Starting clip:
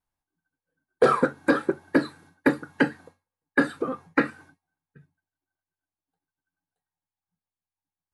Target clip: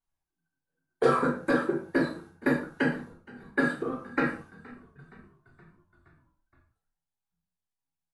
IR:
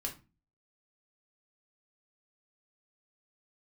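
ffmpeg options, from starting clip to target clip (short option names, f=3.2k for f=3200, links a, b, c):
-filter_complex "[0:a]asplit=6[a][b][c][d][e][f];[b]adelay=470,afreqshift=-41,volume=-22dB[g];[c]adelay=940,afreqshift=-82,volume=-26.4dB[h];[d]adelay=1410,afreqshift=-123,volume=-30.9dB[i];[e]adelay=1880,afreqshift=-164,volume=-35.3dB[j];[f]adelay=2350,afreqshift=-205,volume=-39.7dB[k];[a][g][h][i][j][k]amix=inputs=6:normalize=0[l];[1:a]atrim=start_sample=2205,afade=t=out:st=0.17:d=0.01,atrim=end_sample=7938,asetrate=26019,aresample=44100[m];[l][m]afir=irnorm=-1:irlink=0,volume=-7dB"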